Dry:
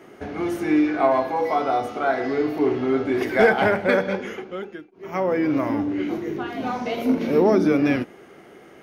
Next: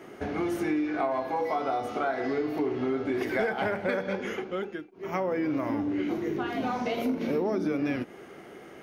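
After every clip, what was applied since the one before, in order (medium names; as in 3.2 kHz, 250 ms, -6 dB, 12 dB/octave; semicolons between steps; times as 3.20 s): compression 5:1, threshold -26 dBFS, peak gain reduction 13.5 dB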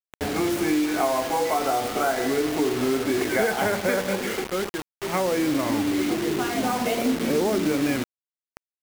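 bit crusher 6-bit; trim +5 dB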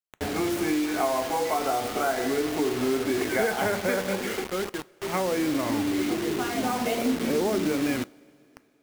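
two-slope reverb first 0.29 s, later 3.3 s, from -17 dB, DRR 18 dB; trim -2.5 dB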